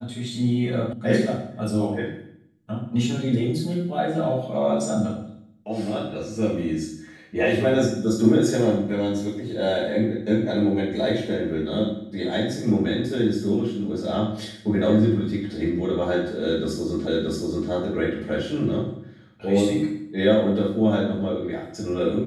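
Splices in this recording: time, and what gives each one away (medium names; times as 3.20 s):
0.93 s: sound stops dead
17.07 s: repeat of the last 0.63 s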